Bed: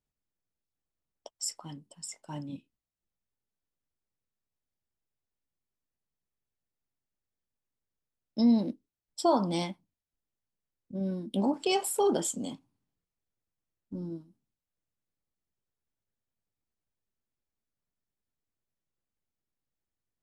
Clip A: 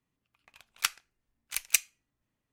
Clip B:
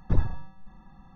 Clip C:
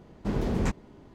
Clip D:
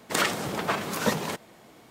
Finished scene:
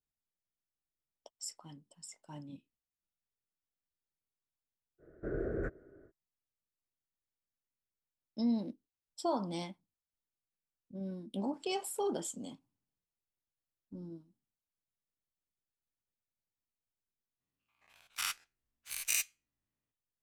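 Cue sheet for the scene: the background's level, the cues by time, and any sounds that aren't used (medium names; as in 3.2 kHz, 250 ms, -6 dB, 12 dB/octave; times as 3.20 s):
bed -8.5 dB
4.98 s: add C -12 dB, fades 0.05 s + FFT filter 140 Hz 0 dB, 210 Hz -8 dB, 350 Hz +10 dB, 640 Hz +7 dB, 920 Hz -19 dB, 1.5 kHz +13 dB, 2.8 kHz -24 dB, 5.1 kHz -26 dB, 8.8 kHz -19 dB
17.40 s: replace with A -14.5 dB + every event in the spectrogram widened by 120 ms
not used: B, D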